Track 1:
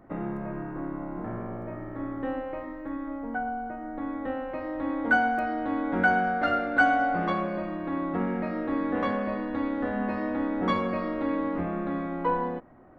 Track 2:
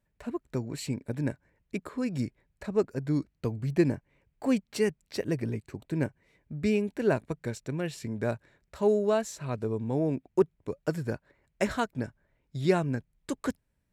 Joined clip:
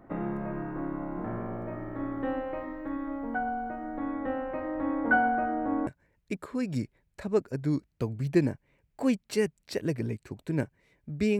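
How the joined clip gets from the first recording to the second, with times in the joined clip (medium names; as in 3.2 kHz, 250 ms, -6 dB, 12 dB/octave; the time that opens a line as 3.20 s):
track 1
3.97–5.87 s: low-pass 3.4 kHz -> 1.1 kHz
5.87 s: go over to track 2 from 1.30 s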